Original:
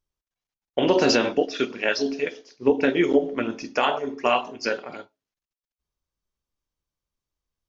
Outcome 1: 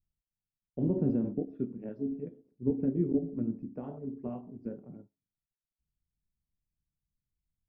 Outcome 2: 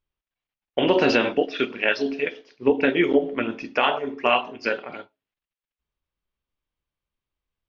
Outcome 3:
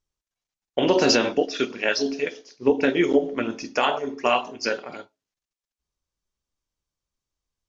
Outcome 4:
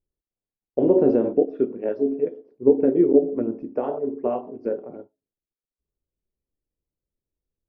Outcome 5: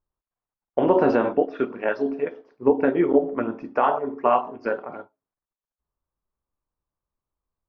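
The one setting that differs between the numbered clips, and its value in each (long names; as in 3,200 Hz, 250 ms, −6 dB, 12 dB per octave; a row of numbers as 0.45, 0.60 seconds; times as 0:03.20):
low-pass with resonance, frequency: 170, 2,900, 7,400, 440, 1,100 Hertz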